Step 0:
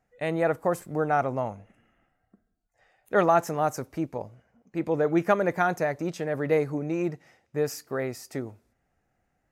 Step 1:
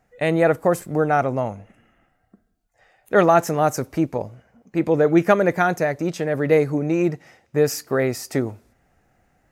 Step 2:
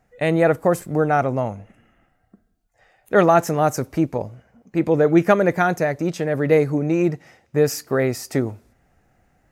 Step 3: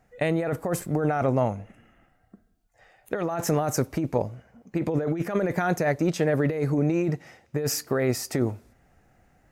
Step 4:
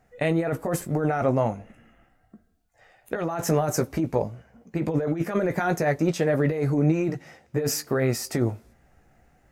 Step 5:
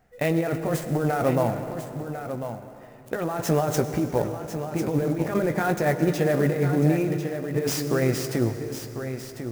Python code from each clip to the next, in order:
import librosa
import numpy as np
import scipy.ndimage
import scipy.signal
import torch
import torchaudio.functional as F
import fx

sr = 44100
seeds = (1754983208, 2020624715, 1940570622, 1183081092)

y1 = fx.dynamic_eq(x, sr, hz=970.0, q=1.4, threshold_db=-38.0, ratio=4.0, max_db=-4)
y1 = fx.rider(y1, sr, range_db=4, speed_s=2.0)
y1 = y1 * 10.0 ** (7.5 / 20.0)
y2 = fx.low_shelf(y1, sr, hz=220.0, db=3.0)
y3 = fx.over_compress(y2, sr, threshold_db=-21.0, ratio=-1.0)
y3 = y3 * 10.0 ** (-3.0 / 20.0)
y4 = fx.chorus_voices(y3, sr, voices=6, hz=1.1, base_ms=16, depth_ms=3.0, mix_pct=30)
y4 = y4 * 10.0 ** (3.0 / 20.0)
y5 = y4 + 10.0 ** (-9.5 / 20.0) * np.pad(y4, (int(1047 * sr / 1000.0), 0))[:len(y4)]
y5 = fx.rev_plate(y5, sr, seeds[0], rt60_s=2.9, hf_ratio=0.75, predelay_ms=85, drr_db=9.5)
y5 = fx.clock_jitter(y5, sr, seeds[1], jitter_ms=0.02)